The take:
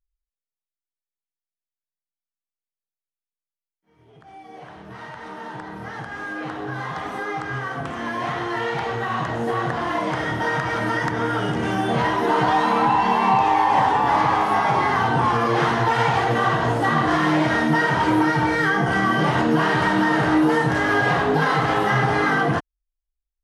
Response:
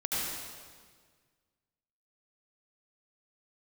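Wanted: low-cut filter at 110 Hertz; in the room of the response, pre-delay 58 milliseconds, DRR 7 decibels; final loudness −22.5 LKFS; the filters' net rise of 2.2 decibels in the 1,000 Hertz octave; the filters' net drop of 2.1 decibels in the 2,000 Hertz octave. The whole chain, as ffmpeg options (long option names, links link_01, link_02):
-filter_complex "[0:a]highpass=110,equalizer=frequency=1000:width_type=o:gain=3.5,equalizer=frequency=2000:width_type=o:gain=-4,asplit=2[link_01][link_02];[1:a]atrim=start_sample=2205,adelay=58[link_03];[link_02][link_03]afir=irnorm=-1:irlink=0,volume=-14.5dB[link_04];[link_01][link_04]amix=inputs=2:normalize=0,volume=-4dB"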